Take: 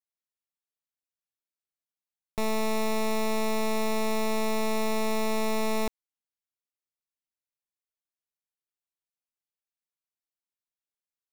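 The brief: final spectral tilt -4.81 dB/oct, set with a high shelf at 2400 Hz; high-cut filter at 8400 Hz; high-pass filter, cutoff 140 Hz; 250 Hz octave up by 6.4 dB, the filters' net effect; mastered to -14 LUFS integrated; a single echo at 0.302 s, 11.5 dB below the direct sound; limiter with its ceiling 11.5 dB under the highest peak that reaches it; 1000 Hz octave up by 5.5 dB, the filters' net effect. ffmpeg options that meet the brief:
-af "highpass=140,lowpass=8.4k,equalizer=f=250:t=o:g=8,equalizer=f=1k:t=o:g=5.5,highshelf=f=2.4k:g=3.5,alimiter=level_in=4dB:limit=-24dB:level=0:latency=1,volume=-4dB,aecho=1:1:302:0.266,volume=22.5dB"

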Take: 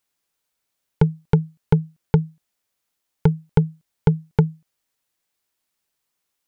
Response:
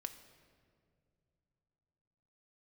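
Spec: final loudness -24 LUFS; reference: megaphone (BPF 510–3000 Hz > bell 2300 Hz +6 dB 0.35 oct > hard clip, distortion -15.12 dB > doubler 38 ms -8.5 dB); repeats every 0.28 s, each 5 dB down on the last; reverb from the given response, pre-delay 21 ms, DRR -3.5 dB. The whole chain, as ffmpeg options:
-filter_complex "[0:a]aecho=1:1:280|560|840|1120|1400|1680|1960:0.562|0.315|0.176|0.0988|0.0553|0.031|0.0173,asplit=2[a][b];[1:a]atrim=start_sample=2205,adelay=21[c];[b][c]afir=irnorm=-1:irlink=0,volume=6.5dB[d];[a][d]amix=inputs=2:normalize=0,highpass=510,lowpass=3k,equalizer=f=2.3k:t=o:w=0.35:g=6,asoftclip=type=hard:threshold=-16dB,asplit=2[e][f];[f]adelay=38,volume=-8.5dB[g];[e][g]amix=inputs=2:normalize=0,volume=6dB"

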